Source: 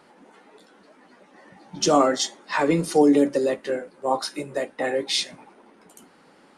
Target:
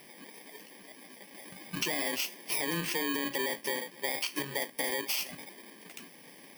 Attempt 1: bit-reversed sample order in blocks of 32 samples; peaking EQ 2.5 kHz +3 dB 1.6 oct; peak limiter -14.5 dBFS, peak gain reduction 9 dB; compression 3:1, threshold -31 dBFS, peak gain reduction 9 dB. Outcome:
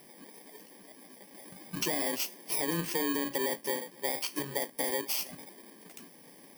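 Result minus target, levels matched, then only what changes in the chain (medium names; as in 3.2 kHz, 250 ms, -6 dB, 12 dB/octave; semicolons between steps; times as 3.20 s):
2 kHz band -4.5 dB
change: peaking EQ 2.5 kHz +11 dB 1.6 oct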